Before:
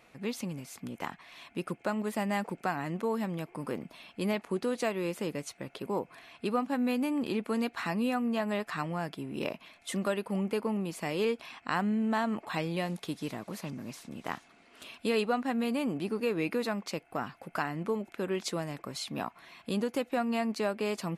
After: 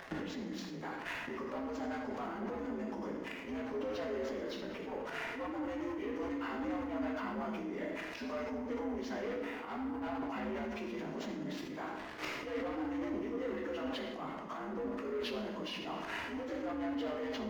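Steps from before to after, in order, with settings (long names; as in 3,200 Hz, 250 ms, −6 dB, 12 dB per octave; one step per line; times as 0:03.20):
partials spread apart or drawn together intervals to 80%
leveller curve on the samples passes 3
parametric band 6,300 Hz −9 dB 2 octaves
gate with flip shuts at −31 dBFS, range −26 dB
speed change +21%
volume swells 102 ms
downward compressor, threshold −55 dBFS, peak gain reduction 14.5 dB
convolution reverb RT60 1.2 s, pre-delay 8 ms, DRR 0 dB
level that may fall only so fast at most 26 dB per second
level +14.5 dB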